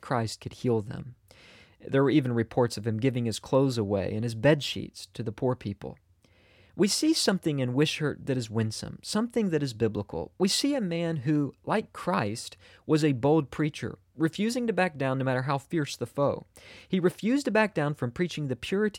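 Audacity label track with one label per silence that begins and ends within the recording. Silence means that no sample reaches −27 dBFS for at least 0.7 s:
1.000000	1.870000	silence
5.870000	6.790000	silence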